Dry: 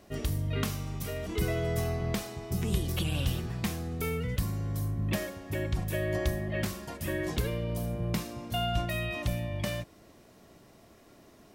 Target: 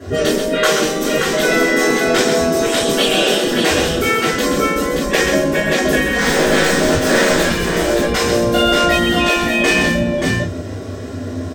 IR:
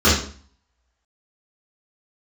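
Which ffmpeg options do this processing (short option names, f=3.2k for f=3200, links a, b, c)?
-filter_complex "[0:a]asettb=1/sr,asplit=3[a][b][c];[a]atrim=end=6.184[d];[b]atrim=start=6.18:end=7.44,asetpts=PTS-STARTPTS,afade=t=in:d=0.004:c=qsin,afade=t=out:st=1.256:d=0.004:c=qsin,acrusher=bits=3:dc=4:mix=0:aa=0.000001[e];[c]atrim=start=7.436[f];[d][e]acrossfade=d=0.004:c1=hsin:c2=qsin[g];[g][f]acrossfade=d=0.004:c1=qsin:c2=hsin,aecho=1:1:130|579:0.501|0.562[h];[1:a]atrim=start_sample=2205,atrim=end_sample=4410,asetrate=52920,aresample=44100[i];[h][i]afir=irnorm=-1:irlink=0,afftfilt=real='re*lt(hypot(re,im),1.58)':imag='im*lt(hypot(re,im),1.58)':win_size=1024:overlap=0.75,volume=1dB"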